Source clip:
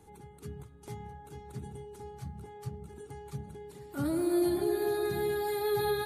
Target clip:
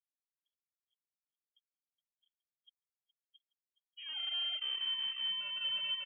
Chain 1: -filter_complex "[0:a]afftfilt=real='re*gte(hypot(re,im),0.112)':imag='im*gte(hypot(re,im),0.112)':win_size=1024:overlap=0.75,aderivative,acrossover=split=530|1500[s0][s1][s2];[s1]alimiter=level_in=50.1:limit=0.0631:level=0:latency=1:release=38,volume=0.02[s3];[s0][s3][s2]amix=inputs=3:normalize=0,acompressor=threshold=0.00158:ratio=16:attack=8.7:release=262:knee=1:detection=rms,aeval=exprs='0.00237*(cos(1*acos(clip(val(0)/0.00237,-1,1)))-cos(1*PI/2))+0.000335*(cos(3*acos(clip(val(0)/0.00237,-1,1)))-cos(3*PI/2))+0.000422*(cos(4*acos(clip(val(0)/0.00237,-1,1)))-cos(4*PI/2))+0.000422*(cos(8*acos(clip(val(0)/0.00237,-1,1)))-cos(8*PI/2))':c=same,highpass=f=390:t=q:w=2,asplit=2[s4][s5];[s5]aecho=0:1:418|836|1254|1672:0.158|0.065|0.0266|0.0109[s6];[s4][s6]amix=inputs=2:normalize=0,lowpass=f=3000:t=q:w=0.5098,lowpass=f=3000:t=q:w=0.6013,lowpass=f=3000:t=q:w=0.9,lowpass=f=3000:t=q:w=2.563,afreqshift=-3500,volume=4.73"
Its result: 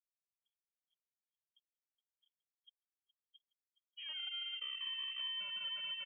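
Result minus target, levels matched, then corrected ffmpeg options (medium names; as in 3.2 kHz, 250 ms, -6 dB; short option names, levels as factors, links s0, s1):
compression: peak gain reduction +7.5 dB
-filter_complex "[0:a]afftfilt=real='re*gte(hypot(re,im),0.112)':imag='im*gte(hypot(re,im),0.112)':win_size=1024:overlap=0.75,aderivative,acrossover=split=530|1500[s0][s1][s2];[s1]alimiter=level_in=50.1:limit=0.0631:level=0:latency=1:release=38,volume=0.02[s3];[s0][s3][s2]amix=inputs=3:normalize=0,aeval=exprs='0.00237*(cos(1*acos(clip(val(0)/0.00237,-1,1)))-cos(1*PI/2))+0.000335*(cos(3*acos(clip(val(0)/0.00237,-1,1)))-cos(3*PI/2))+0.000422*(cos(4*acos(clip(val(0)/0.00237,-1,1)))-cos(4*PI/2))+0.000422*(cos(8*acos(clip(val(0)/0.00237,-1,1)))-cos(8*PI/2))':c=same,highpass=f=390:t=q:w=2,asplit=2[s4][s5];[s5]aecho=0:1:418|836|1254|1672:0.158|0.065|0.0266|0.0109[s6];[s4][s6]amix=inputs=2:normalize=0,lowpass=f=3000:t=q:w=0.5098,lowpass=f=3000:t=q:w=0.6013,lowpass=f=3000:t=q:w=0.9,lowpass=f=3000:t=q:w=2.563,afreqshift=-3500,volume=4.73"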